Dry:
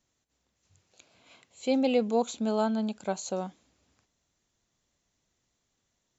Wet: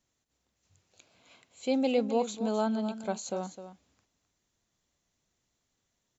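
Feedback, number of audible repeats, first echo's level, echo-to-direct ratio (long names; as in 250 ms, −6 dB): repeats not evenly spaced, 1, −11.5 dB, −11.5 dB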